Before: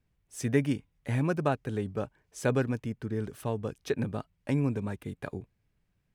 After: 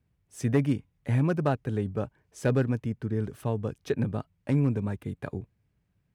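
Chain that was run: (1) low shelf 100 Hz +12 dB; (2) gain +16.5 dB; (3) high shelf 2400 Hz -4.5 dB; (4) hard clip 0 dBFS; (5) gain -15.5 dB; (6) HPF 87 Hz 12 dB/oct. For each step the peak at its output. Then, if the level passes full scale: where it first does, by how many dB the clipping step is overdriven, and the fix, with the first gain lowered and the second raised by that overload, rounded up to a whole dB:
-10.0, +6.5, +6.5, 0.0, -15.5, -12.5 dBFS; step 2, 6.5 dB; step 2 +9.5 dB, step 5 -8.5 dB

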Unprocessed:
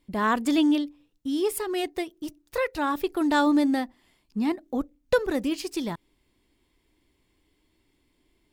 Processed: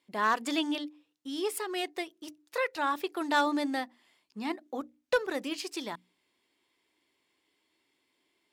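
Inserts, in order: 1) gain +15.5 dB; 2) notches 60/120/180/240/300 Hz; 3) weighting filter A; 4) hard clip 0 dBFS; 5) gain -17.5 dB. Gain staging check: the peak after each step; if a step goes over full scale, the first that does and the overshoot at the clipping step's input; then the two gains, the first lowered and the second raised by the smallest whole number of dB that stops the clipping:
+6.5, +6.5, +4.0, 0.0, -17.5 dBFS; step 1, 4.0 dB; step 1 +11.5 dB, step 5 -13.5 dB

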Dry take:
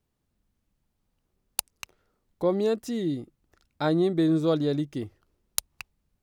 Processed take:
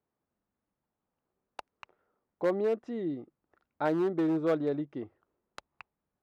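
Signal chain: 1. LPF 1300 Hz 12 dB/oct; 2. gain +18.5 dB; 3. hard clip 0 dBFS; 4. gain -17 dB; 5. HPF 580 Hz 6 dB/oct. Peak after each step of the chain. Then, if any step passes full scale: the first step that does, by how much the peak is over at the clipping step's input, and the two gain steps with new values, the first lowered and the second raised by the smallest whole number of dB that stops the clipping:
-14.0, +4.5, 0.0, -17.0, -15.5 dBFS; step 2, 4.5 dB; step 2 +13.5 dB, step 4 -12 dB

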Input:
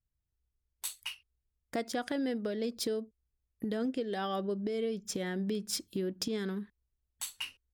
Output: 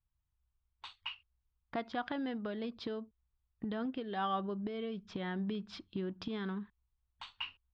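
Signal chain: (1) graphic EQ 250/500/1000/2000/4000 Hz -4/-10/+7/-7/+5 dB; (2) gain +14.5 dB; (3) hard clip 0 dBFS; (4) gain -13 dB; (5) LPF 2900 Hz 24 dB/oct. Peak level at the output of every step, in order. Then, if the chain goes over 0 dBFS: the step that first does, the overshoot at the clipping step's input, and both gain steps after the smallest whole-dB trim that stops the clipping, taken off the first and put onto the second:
-18.5, -4.0, -4.0, -17.0, -23.5 dBFS; no overload

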